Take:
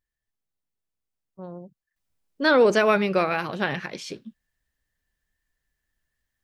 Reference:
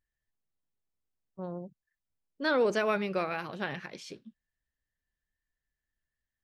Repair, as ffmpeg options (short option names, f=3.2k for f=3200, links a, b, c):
-af "asetnsamples=n=441:p=0,asendcmd='1.96 volume volume -9dB',volume=0dB"